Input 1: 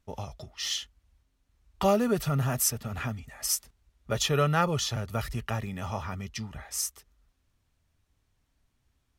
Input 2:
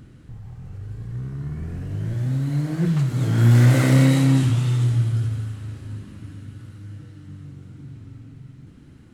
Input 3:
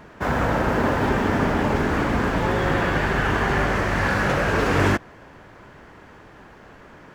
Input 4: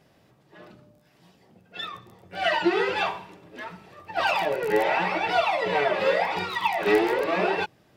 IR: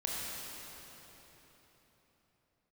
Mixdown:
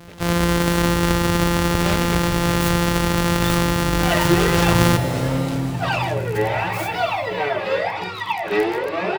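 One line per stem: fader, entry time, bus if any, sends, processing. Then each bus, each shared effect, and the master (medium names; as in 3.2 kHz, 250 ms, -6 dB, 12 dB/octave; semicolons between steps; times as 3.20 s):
-6.0 dB, 0.00 s, send -13 dB, delay time shaken by noise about 1.9 kHz, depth 0.2 ms
-10.0 dB, 1.30 s, send -14.5 dB, high-order bell 620 Hz +9 dB
-0.5 dB, 0.00 s, send -7.5 dB, sorted samples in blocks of 256 samples
+1.0 dB, 1.65 s, no send, none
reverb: on, RT60 4.1 s, pre-delay 22 ms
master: none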